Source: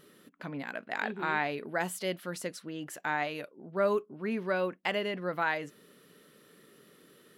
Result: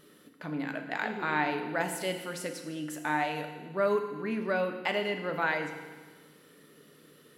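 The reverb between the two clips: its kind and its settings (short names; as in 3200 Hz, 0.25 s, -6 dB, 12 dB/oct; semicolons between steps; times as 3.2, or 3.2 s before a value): FDN reverb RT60 1.4 s, low-frequency decay 1.2×, high-frequency decay 1×, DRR 4.5 dB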